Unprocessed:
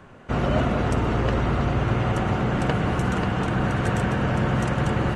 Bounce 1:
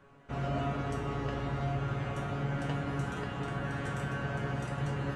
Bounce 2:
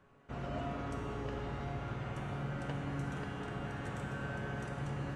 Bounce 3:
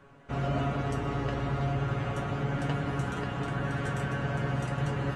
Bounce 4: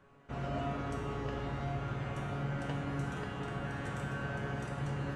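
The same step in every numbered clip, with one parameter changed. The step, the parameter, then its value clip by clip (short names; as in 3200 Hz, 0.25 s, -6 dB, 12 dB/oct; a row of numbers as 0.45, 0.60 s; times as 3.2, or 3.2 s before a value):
resonator, decay: 0.42, 2.1, 0.19, 0.94 s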